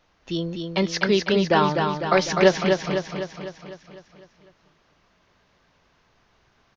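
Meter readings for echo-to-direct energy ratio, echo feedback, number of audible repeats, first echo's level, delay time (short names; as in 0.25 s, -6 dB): -3.5 dB, 57%, 7, -5.0 dB, 0.251 s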